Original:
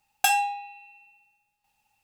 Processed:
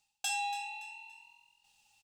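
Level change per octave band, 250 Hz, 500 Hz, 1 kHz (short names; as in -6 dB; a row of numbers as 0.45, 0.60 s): n/a, under -20 dB, -11.5 dB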